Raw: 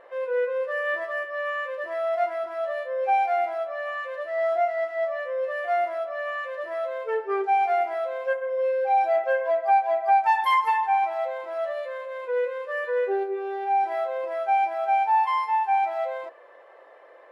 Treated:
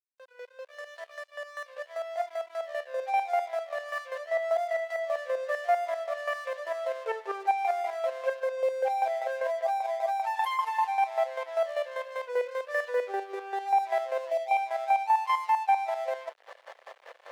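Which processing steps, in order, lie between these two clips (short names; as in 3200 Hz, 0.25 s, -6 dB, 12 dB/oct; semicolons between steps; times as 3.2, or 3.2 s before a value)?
opening faded in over 4.97 s; in parallel at -2.5 dB: upward compressor, threshold -28 dBFS; on the sum: spectral delete 14.3–14.58, 790–2300 Hz; compressor 4:1, threshold -19 dBFS, peak gain reduction 7.5 dB; chopper 5.1 Hz, depth 60%, duty 30%; on a send: thinning echo 0.388 s, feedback 49%, high-pass 670 Hz, level -21 dB; on the sum: dynamic EQ 1400 Hz, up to -5 dB, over -46 dBFS, Q 2.7; crossover distortion -45 dBFS; HPF 510 Hz 24 dB/oct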